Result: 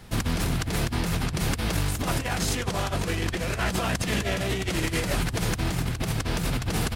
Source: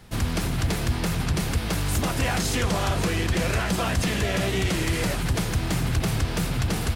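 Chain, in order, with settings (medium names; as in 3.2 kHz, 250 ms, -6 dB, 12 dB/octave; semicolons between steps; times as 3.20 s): compressor with a negative ratio -26 dBFS, ratio -0.5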